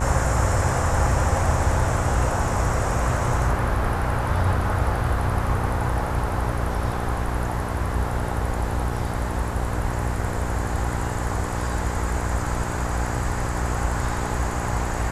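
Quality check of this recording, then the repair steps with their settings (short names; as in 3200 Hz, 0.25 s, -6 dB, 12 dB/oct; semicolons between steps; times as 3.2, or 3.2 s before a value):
buzz 60 Hz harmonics 18 -28 dBFS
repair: de-hum 60 Hz, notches 18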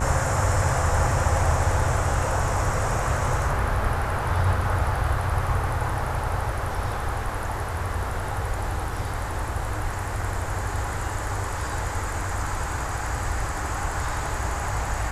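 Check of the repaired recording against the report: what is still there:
none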